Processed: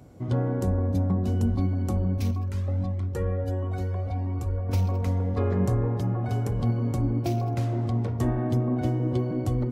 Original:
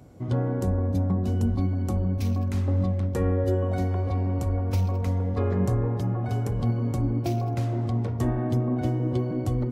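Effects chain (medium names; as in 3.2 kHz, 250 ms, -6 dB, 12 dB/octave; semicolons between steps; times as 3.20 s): 2.31–4.69 s: Shepard-style flanger rising 1.5 Hz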